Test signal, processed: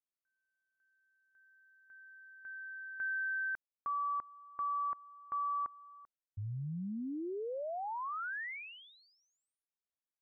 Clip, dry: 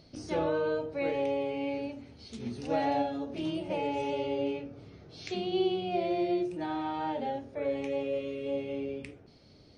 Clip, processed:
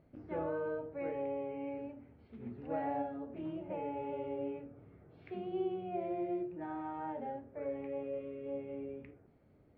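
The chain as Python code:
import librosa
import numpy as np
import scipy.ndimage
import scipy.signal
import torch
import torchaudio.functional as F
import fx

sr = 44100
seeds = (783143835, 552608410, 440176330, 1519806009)

y = scipy.signal.sosfilt(scipy.signal.butter(4, 2000.0, 'lowpass', fs=sr, output='sos'), x)
y = y * librosa.db_to_amplitude(-7.5)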